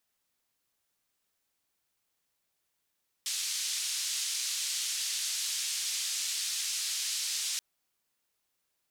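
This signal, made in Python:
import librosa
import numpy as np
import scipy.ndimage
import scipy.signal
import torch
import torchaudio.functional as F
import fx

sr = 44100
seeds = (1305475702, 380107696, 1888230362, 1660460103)

y = fx.band_noise(sr, seeds[0], length_s=4.33, low_hz=3700.0, high_hz=7000.0, level_db=-33.5)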